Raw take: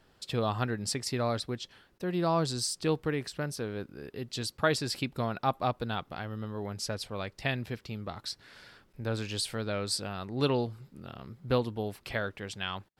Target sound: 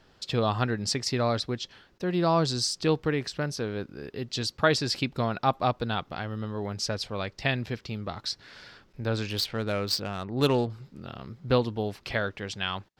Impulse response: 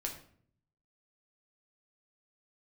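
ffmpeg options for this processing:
-filter_complex "[0:a]highshelf=f=7.6k:t=q:w=1.5:g=-7.5,asettb=1/sr,asplit=3[a][b][c];[a]atrim=end=9.294[d];[b]atrim=start=9.29:end=10.7,asetpts=PTS-STARTPTS,afade=t=in:d=0.004:c=qsin,afade=t=out:st=1.406:d=0.004:c=qsin,adynamicsmooth=sensitivity=7.5:basefreq=2.4k[e];[c]atrim=start=10.696[f];[d][e]acrossfade=d=0.004:c1=hsin:c2=qsin[g];[g][f]acrossfade=d=0.004:c1=qsin:c2=hsin,volume=4dB"

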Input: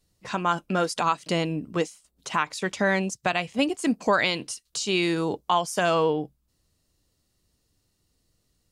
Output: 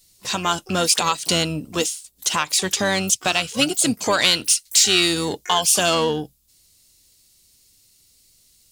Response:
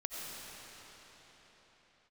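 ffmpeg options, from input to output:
-filter_complex "[0:a]acontrast=37,aexciter=amount=3.3:drive=8.7:freq=2.9k,asplit=3[a][b][c];[b]asetrate=22050,aresample=44100,atempo=2,volume=-14dB[d];[c]asetrate=88200,aresample=44100,atempo=0.5,volume=-17dB[e];[a][d][e]amix=inputs=3:normalize=0,volume=-3.5dB"

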